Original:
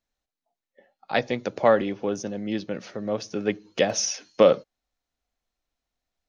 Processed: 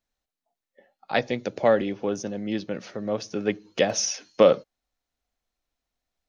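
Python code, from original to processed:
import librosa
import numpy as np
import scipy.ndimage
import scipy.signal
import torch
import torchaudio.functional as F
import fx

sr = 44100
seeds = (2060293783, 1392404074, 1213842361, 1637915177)

y = fx.peak_eq(x, sr, hz=1100.0, db=-6.0, octaves=0.81, at=(1.3, 1.94))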